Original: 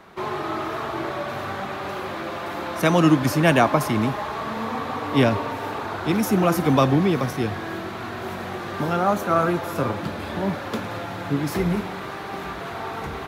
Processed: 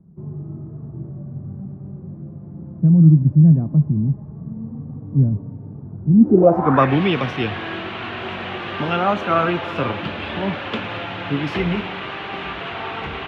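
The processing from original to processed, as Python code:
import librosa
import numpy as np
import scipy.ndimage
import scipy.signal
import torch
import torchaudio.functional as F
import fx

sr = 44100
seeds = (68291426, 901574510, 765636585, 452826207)

y = fx.filter_sweep_lowpass(x, sr, from_hz=160.0, to_hz=2900.0, start_s=6.1, end_s=6.96, q=4.0)
y = F.gain(torch.from_numpy(y), 1.0).numpy()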